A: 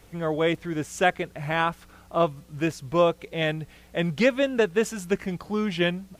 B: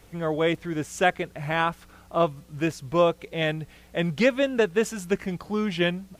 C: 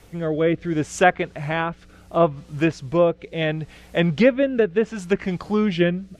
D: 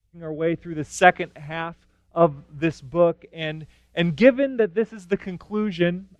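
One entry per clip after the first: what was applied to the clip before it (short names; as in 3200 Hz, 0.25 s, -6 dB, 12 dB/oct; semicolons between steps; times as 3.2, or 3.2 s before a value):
nothing audible
treble ducked by the level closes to 2200 Hz, closed at -18.5 dBFS; rotary speaker horn 0.7 Hz; gain +6.5 dB
three-band expander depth 100%; gain -3 dB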